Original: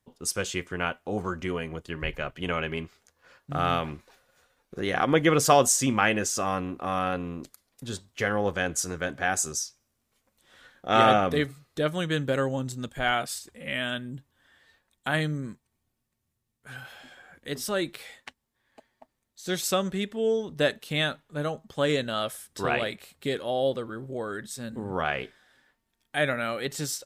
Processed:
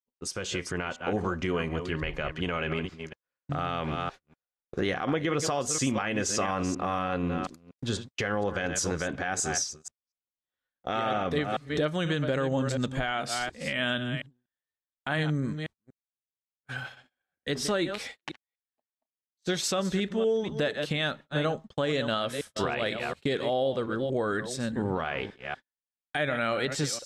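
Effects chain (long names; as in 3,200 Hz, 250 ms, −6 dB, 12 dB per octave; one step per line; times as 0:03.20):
delay that plays each chunk backwards 241 ms, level −12 dB
low-pass filter 6,300 Hz 12 dB per octave
noise gate −44 dBFS, range −42 dB
downward compressor 6 to 1, threshold −28 dBFS, peak gain reduction 13.5 dB
brickwall limiter −23.5 dBFS, peak gain reduction 8.5 dB
automatic gain control gain up to 5.5 dB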